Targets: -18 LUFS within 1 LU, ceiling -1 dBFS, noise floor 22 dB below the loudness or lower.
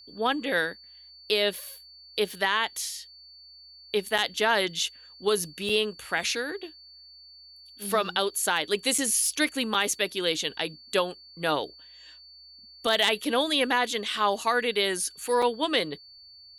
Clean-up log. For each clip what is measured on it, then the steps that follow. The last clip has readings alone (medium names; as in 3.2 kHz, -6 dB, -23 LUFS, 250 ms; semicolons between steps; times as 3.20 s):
dropouts 5; longest dropout 4.4 ms; steady tone 4.5 kHz; tone level -48 dBFS; loudness -26.5 LUFS; peak level -12.0 dBFS; loudness target -18.0 LUFS
-> interpolate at 4.18/5.69/8.98/9.74/15.42 s, 4.4 ms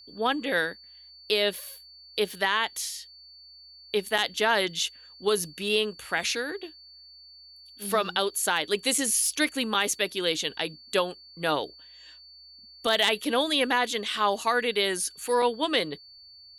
dropouts 0; steady tone 4.5 kHz; tone level -48 dBFS
-> band-stop 4.5 kHz, Q 30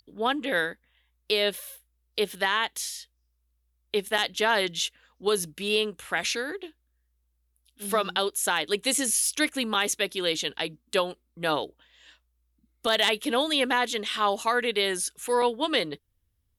steady tone not found; loudness -26.5 LUFS; peak level -12.0 dBFS; loudness target -18.0 LUFS
-> trim +8.5 dB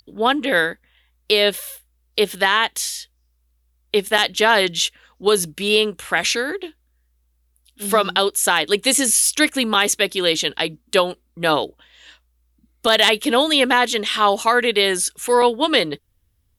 loudness -18.0 LUFS; peak level -3.5 dBFS; noise floor -65 dBFS